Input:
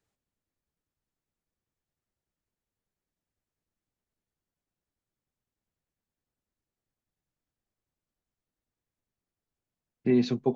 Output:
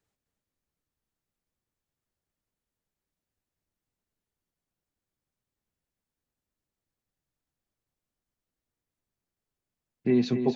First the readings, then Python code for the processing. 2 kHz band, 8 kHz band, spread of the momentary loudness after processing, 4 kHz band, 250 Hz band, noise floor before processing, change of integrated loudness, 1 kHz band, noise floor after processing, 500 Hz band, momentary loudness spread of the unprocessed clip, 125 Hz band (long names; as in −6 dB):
+0.5 dB, can't be measured, 6 LU, +0.5 dB, +0.5 dB, below −85 dBFS, +0.5 dB, 0.0 dB, below −85 dBFS, +0.5 dB, 6 LU, +0.5 dB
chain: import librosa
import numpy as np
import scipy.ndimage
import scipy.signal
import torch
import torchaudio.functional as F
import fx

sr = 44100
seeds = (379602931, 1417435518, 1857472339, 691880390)

y = x + 10.0 ** (-8.0 / 20.0) * np.pad(x, (int(259 * sr / 1000.0), 0))[:len(x)]